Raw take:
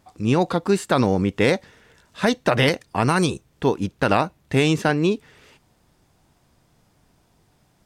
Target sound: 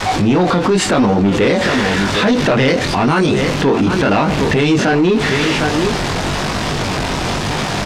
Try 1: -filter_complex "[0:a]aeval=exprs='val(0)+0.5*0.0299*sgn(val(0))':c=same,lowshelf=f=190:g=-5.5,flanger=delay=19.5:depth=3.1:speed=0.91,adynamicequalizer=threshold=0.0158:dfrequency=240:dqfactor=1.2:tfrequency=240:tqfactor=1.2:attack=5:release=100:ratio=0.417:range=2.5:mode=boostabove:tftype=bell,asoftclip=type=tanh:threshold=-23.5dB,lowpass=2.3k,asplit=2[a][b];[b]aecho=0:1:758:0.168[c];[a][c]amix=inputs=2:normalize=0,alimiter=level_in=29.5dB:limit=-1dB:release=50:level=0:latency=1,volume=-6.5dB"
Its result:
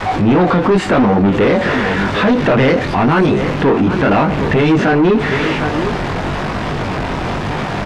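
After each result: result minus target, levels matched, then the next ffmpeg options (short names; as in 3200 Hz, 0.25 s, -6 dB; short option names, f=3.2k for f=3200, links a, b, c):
4000 Hz band -6.5 dB; soft clip: distortion +6 dB
-filter_complex "[0:a]aeval=exprs='val(0)+0.5*0.0299*sgn(val(0))':c=same,lowshelf=f=190:g=-5.5,flanger=delay=19.5:depth=3.1:speed=0.91,adynamicequalizer=threshold=0.0158:dfrequency=240:dqfactor=1.2:tfrequency=240:tqfactor=1.2:attack=5:release=100:ratio=0.417:range=2.5:mode=boostabove:tftype=bell,asoftclip=type=tanh:threshold=-23.5dB,lowpass=5k,asplit=2[a][b];[b]aecho=0:1:758:0.168[c];[a][c]amix=inputs=2:normalize=0,alimiter=level_in=29.5dB:limit=-1dB:release=50:level=0:latency=1,volume=-6.5dB"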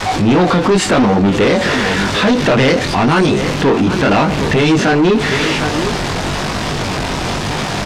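soft clip: distortion +6 dB
-filter_complex "[0:a]aeval=exprs='val(0)+0.5*0.0299*sgn(val(0))':c=same,lowshelf=f=190:g=-5.5,flanger=delay=19.5:depth=3.1:speed=0.91,adynamicequalizer=threshold=0.0158:dfrequency=240:dqfactor=1.2:tfrequency=240:tqfactor=1.2:attack=5:release=100:ratio=0.417:range=2.5:mode=boostabove:tftype=bell,asoftclip=type=tanh:threshold=-17dB,lowpass=5k,asplit=2[a][b];[b]aecho=0:1:758:0.168[c];[a][c]amix=inputs=2:normalize=0,alimiter=level_in=29.5dB:limit=-1dB:release=50:level=0:latency=1,volume=-6.5dB"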